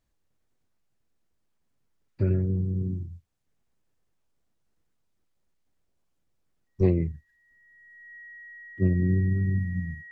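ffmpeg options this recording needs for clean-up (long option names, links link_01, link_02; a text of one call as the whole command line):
ffmpeg -i in.wav -af "bandreject=frequency=1900:width=30" out.wav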